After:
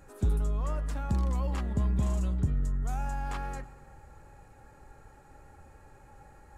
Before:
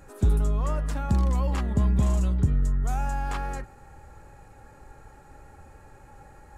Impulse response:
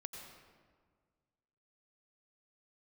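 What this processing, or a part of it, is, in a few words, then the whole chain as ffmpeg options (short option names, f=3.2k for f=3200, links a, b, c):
saturated reverb return: -filter_complex "[0:a]asplit=2[a][b];[1:a]atrim=start_sample=2205[c];[b][c]afir=irnorm=-1:irlink=0,asoftclip=type=tanh:threshold=-29dB,volume=-6.5dB[d];[a][d]amix=inputs=2:normalize=0,volume=-6.5dB"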